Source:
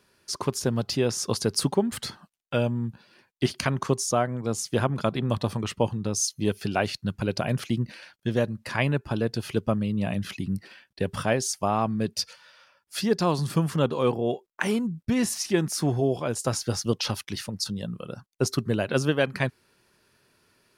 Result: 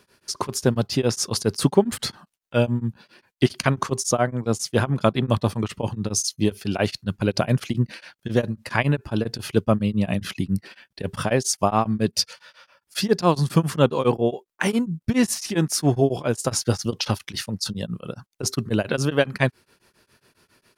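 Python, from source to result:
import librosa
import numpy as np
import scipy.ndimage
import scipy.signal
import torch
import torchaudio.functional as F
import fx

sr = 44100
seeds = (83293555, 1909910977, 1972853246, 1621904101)

y = x * np.abs(np.cos(np.pi * 7.3 * np.arange(len(x)) / sr))
y = F.gain(torch.from_numpy(y), 7.0).numpy()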